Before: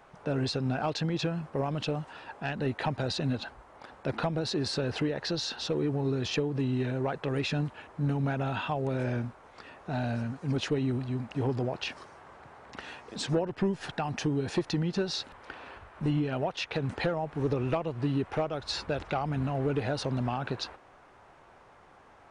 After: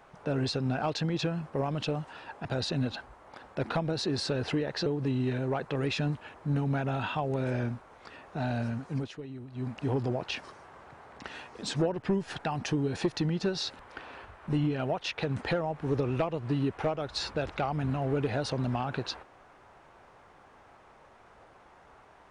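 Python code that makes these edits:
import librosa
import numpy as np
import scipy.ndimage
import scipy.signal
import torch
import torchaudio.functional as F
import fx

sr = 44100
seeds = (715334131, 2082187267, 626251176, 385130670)

y = fx.edit(x, sr, fx.cut(start_s=2.45, length_s=0.48),
    fx.cut(start_s=5.34, length_s=1.05),
    fx.fade_down_up(start_s=10.46, length_s=0.74, db=-13.0, fade_s=0.16), tone=tone)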